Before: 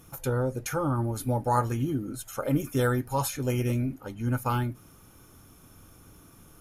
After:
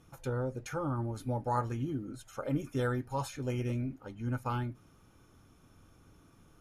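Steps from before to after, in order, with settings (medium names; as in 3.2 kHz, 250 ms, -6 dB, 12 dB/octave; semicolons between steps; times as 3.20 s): distance through air 62 m; trim -6.5 dB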